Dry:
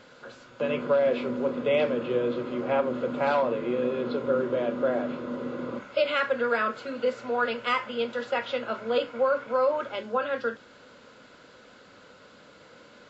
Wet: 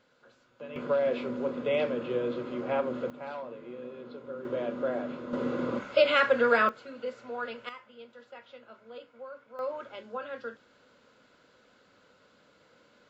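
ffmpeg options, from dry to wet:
-af "asetnsamples=n=441:p=0,asendcmd='0.76 volume volume -4dB;3.1 volume volume -15dB;4.45 volume volume -5dB;5.33 volume volume 2.5dB;6.69 volume volume -9.5dB;7.69 volume volume -20dB;9.59 volume volume -10dB',volume=0.178"

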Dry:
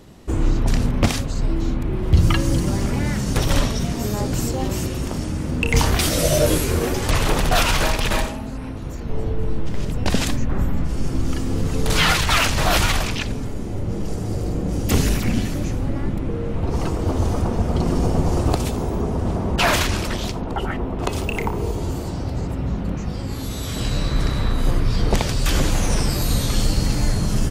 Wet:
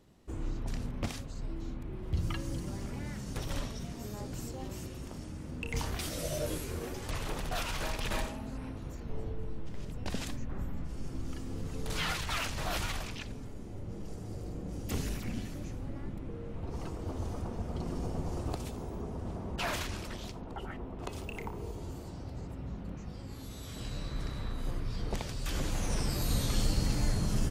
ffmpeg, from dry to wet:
-af "volume=0.668,afade=t=in:st=7.72:d=0.86:silence=0.421697,afade=t=out:st=8.58:d=0.93:silence=0.473151,afade=t=in:st=25.41:d=0.99:silence=0.473151"

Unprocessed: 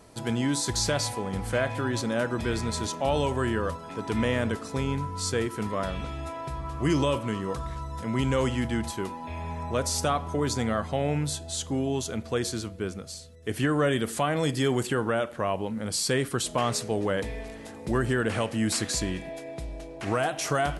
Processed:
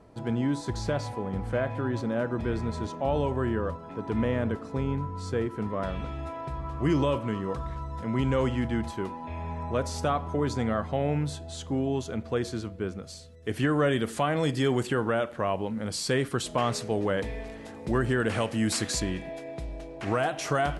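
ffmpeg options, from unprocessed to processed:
-af "asetnsamples=n=441:p=0,asendcmd='5.82 lowpass f 2000;13.03 lowpass f 4200;18.2 lowpass f 9700;19 lowpass f 4000',lowpass=f=1000:p=1"

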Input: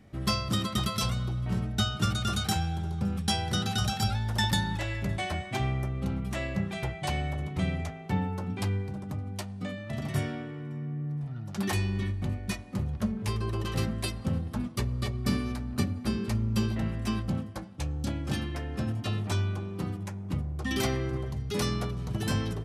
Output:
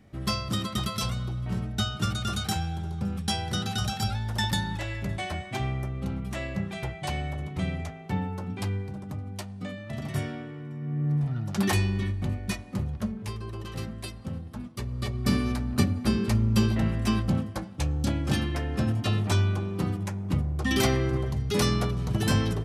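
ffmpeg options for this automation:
-af "volume=8.91,afade=t=in:st=10.79:d=0.35:silence=0.354813,afade=t=out:st=11.14:d=0.85:silence=0.473151,afade=t=out:st=12.69:d=0.69:silence=0.421697,afade=t=in:st=14.76:d=0.72:silence=0.298538"

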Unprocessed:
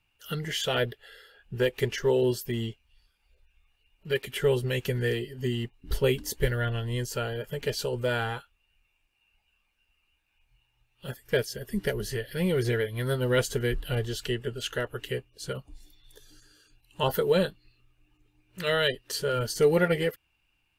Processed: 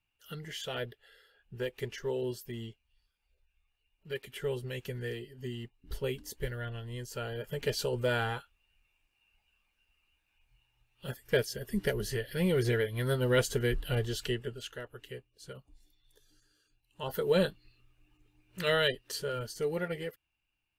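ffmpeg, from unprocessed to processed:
-af "volume=2.82,afade=t=in:st=7.04:d=0.59:silence=0.398107,afade=t=out:st=14.24:d=0.49:silence=0.316228,afade=t=in:st=17.05:d=0.42:silence=0.281838,afade=t=out:st=18.61:d=0.93:silence=0.316228"

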